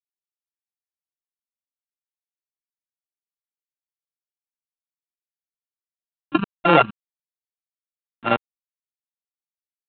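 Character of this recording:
a buzz of ramps at a fixed pitch in blocks of 32 samples
tremolo saw down 1.4 Hz, depth 30%
a quantiser's noise floor 8 bits, dither none
mu-law

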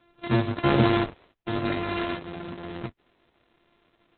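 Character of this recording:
a buzz of ramps at a fixed pitch in blocks of 128 samples
Opus

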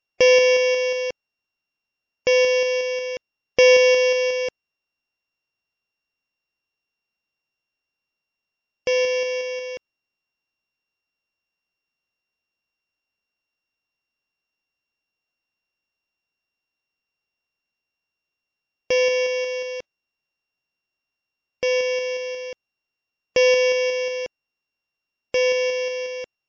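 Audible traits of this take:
a buzz of ramps at a fixed pitch in blocks of 16 samples
MP3

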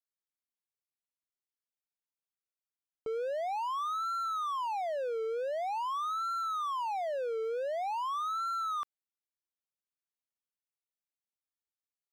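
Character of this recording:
background noise floor −96 dBFS
spectral slope −10.0 dB per octave

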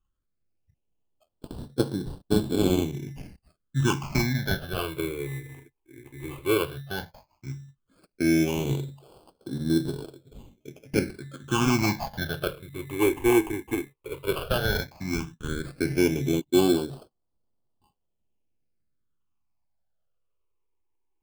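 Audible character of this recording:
aliases and images of a low sample rate 1,900 Hz, jitter 0%
phaser sweep stages 8, 0.13 Hz, lowest notch 180–2,200 Hz

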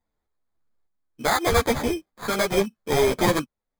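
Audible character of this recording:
sample-and-hold tremolo
aliases and images of a low sample rate 2,800 Hz, jitter 0%
a shimmering, thickened sound

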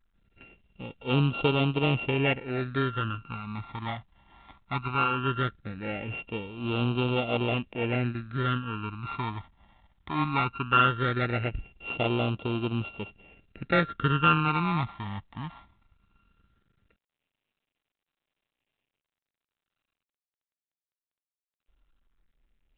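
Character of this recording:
a buzz of ramps at a fixed pitch in blocks of 32 samples
phaser sweep stages 12, 0.18 Hz, lowest notch 450–1,700 Hz
mu-law

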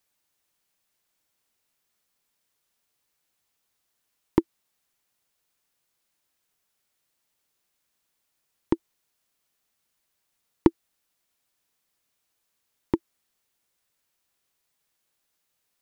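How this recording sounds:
background noise floor −77 dBFS
spectral slope −7.0 dB per octave

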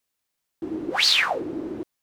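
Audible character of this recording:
background noise floor −80 dBFS
spectral slope −1.5 dB per octave

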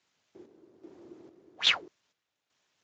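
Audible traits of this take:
a quantiser's noise floor 12 bits, dither triangular
chopped level 1.2 Hz, depth 60%, duty 55%
Speex

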